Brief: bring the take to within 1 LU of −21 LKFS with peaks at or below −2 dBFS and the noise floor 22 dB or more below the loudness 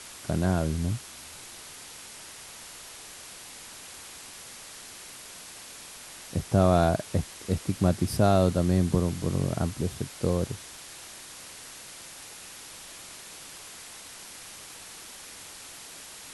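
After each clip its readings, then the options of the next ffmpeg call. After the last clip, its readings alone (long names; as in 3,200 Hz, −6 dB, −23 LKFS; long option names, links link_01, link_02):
background noise floor −45 dBFS; target noise floor −49 dBFS; integrated loudness −27.0 LKFS; sample peak −9.0 dBFS; target loudness −21.0 LKFS
→ -af "afftdn=noise_reduction=6:noise_floor=-45"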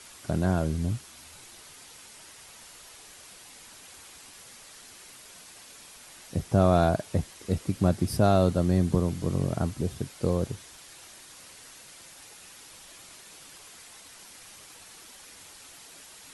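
background noise floor −50 dBFS; integrated loudness −27.0 LKFS; sample peak −9.0 dBFS; target loudness −21.0 LKFS
→ -af "volume=6dB"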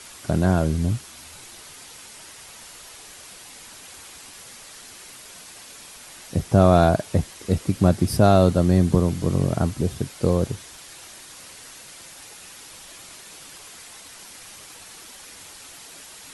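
integrated loudness −21.0 LKFS; sample peak −3.0 dBFS; background noise floor −44 dBFS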